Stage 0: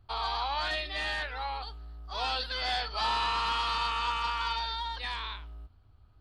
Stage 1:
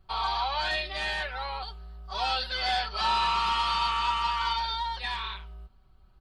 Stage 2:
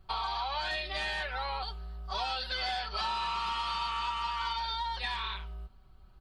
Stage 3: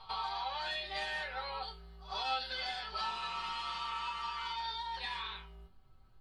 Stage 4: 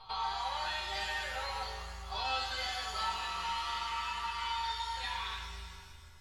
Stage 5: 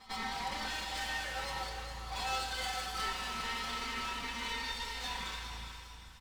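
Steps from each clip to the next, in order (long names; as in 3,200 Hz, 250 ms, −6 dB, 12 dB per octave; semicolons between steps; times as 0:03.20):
comb filter 5.3 ms, depth 86%
downward compressor, threshold −33 dBFS, peak gain reduction 10 dB; level +2 dB
resonators tuned to a chord F2 major, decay 0.23 s; backwards echo 99 ms −17 dB; level +6 dB
reverb with rising layers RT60 2 s, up +7 semitones, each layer −8 dB, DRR 3 dB
lower of the sound and its delayed copy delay 3.9 ms; on a send: repeating echo 407 ms, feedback 33%, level −10 dB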